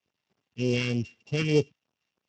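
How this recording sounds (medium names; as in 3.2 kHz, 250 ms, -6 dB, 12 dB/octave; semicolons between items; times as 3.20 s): a buzz of ramps at a fixed pitch in blocks of 16 samples; phasing stages 2, 3.3 Hz, lowest notch 600–1700 Hz; a quantiser's noise floor 12-bit, dither none; Speex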